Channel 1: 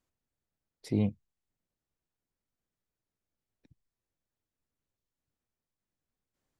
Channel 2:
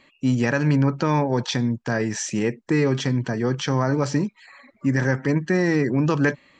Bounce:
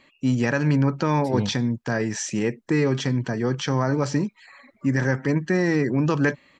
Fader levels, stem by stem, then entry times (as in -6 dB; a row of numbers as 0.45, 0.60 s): +1.5, -1.0 dB; 0.40, 0.00 s